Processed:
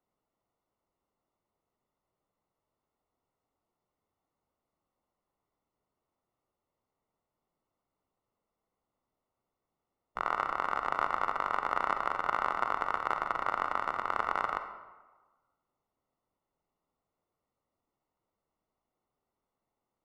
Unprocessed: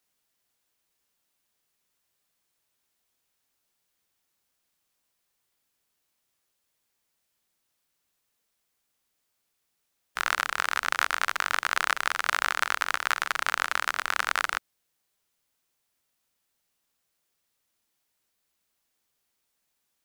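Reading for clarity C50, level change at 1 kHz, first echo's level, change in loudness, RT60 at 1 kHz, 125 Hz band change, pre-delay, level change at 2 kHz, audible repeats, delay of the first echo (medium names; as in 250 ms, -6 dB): 8.0 dB, -0.5 dB, no echo, -5.0 dB, 1.3 s, no reading, 38 ms, -11.0 dB, no echo, no echo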